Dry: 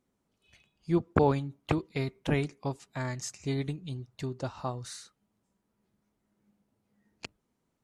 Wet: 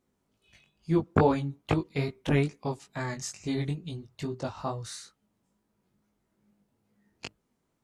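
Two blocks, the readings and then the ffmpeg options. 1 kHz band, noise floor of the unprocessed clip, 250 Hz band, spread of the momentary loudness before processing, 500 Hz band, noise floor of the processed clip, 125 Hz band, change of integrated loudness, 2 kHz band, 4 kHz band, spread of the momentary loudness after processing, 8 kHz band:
+2.0 dB, −79 dBFS, +2.5 dB, 19 LU, +1.5 dB, −78 dBFS, +2.0 dB, +2.0 dB, +2.0 dB, +2.0 dB, 19 LU, +1.5 dB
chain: -af "flanger=delay=18:depth=3.7:speed=2.3,volume=5dB"

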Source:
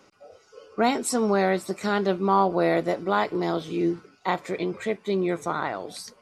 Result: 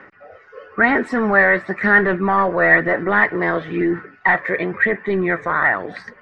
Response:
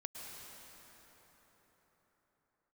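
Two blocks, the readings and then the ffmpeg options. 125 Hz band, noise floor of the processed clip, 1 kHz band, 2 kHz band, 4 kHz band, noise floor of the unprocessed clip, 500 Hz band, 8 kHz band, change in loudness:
+5.0 dB, −48 dBFS, +5.5 dB, +18.5 dB, can't be measured, −59 dBFS, +4.5 dB, below −15 dB, +8.5 dB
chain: -af "aphaser=in_gain=1:out_gain=1:delay=1.9:decay=0.36:speed=1:type=sinusoidal,apsyclip=19.5dB,lowpass=frequency=1800:width_type=q:width=11,volume=-13.5dB"

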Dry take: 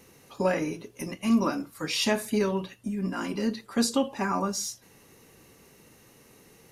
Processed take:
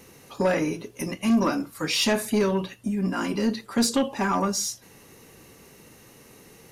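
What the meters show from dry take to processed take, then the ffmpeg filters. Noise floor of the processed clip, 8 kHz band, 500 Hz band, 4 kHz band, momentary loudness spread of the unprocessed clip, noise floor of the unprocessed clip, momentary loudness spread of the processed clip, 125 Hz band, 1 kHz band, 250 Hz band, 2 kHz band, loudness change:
−52 dBFS, +4.0 dB, +3.0 dB, +4.0 dB, 9 LU, −57 dBFS, 8 LU, +4.0 dB, +3.0 dB, +3.0 dB, +3.5 dB, +3.5 dB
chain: -af "asoftclip=type=tanh:threshold=-19.5dB,volume=5dB"

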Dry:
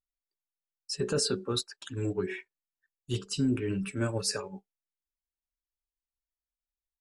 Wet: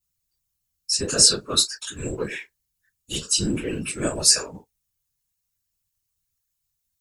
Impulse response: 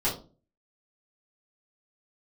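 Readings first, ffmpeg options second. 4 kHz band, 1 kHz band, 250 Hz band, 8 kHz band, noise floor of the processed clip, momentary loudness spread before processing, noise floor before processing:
+14.0 dB, +6.5 dB, +2.0 dB, +17.5 dB, −78 dBFS, 10 LU, below −85 dBFS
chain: -filter_complex "[1:a]atrim=start_sample=2205,atrim=end_sample=3969,asetrate=61740,aresample=44100[link_01];[0:a][link_01]afir=irnorm=-1:irlink=0,afftfilt=real='hypot(re,im)*cos(2*PI*random(0))':imag='hypot(re,im)*sin(2*PI*random(1))':win_size=512:overlap=0.75,crystalizer=i=9.5:c=0,volume=-1.5dB"

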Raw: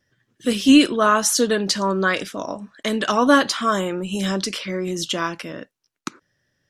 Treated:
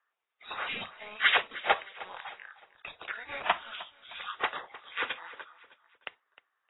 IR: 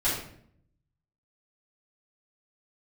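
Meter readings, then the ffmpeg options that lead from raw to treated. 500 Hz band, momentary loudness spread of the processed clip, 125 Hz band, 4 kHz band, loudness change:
−19.5 dB, 20 LU, −29.0 dB, −10.5 dB, −12.5 dB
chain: -filter_complex "[0:a]afftfilt=real='real(if(lt(b,736),b+184*(1-2*mod(floor(b/184),2)),b),0)':imag='imag(if(lt(b,736),b+184*(1-2*mod(floor(b/184),2)),b),0)':win_size=2048:overlap=0.75,highshelf=frequency=5100:gain=-6,acrossover=split=190|5400[link_01][link_02][link_03];[link_03]aeval=exprs='clip(val(0),-1,0.0447)':channel_layout=same[link_04];[link_01][link_02][link_04]amix=inputs=3:normalize=0,acrossover=split=460 6300:gain=0.0708 1 0.141[link_05][link_06][link_07];[link_05][link_06][link_07]amix=inputs=3:normalize=0,asplit=2[link_08][link_09];[link_09]aecho=0:1:308|616|924:0.133|0.0533|0.0213[link_10];[link_08][link_10]amix=inputs=2:normalize=0" -ar 16000 -c:a aac -b:a 16k

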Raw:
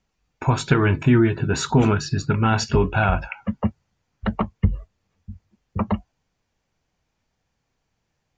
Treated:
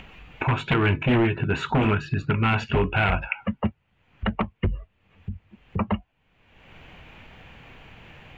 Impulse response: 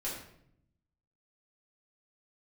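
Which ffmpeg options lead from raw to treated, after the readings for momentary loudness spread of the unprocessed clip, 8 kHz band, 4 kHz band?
11 LU, below −15 dB, −2.0 dB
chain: -af "aeval=exprs='0.251*(abs(mod(val(0)/0.251+3,4)-2)-1)':channel_layout=same,acompressor=mode=upward:threshold=-21dB:ratio=2.5,highshelf=frequency=3900:width_type=q:width=3:gain=-12,volume=-2.5dB"

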